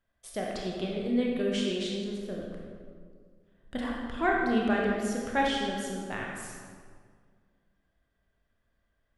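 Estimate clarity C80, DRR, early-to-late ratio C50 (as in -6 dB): 2.0 dB, -2.5 dB, 0.0 dB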